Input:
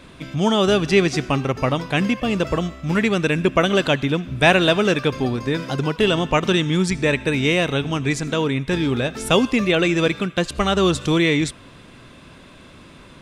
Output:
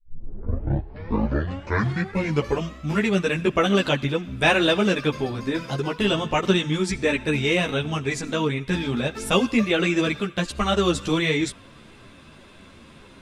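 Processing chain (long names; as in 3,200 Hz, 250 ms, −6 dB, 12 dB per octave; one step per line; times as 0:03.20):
turntable start at the beginning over 2.82 s
string-ensemble chorus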